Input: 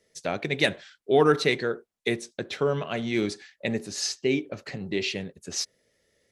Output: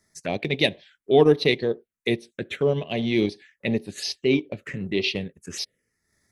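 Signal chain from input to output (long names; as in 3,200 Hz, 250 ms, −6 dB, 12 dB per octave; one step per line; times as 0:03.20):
phaser swept by the level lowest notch 490 Hz, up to 1,400 Hz, full sweep at −26 dBFS
transient designer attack −3 dB, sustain −8 dB
level +6 dB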